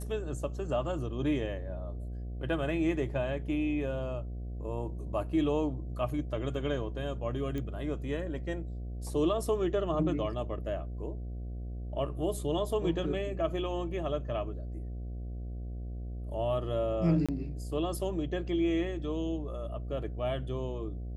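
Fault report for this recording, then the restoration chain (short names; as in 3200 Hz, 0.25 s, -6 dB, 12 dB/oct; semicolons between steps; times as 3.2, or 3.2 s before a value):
buzz 60 Hz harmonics 12 -38 dBFS
7.58 pop -25 dBFS
17.26–17.29 gap 26 ms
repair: de-click; de-hum 60 Hz, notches 12; interpolate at 17.26, 26 ms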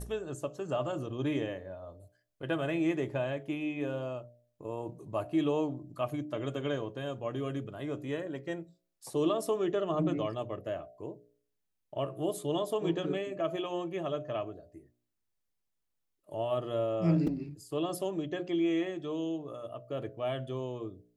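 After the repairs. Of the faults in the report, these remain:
none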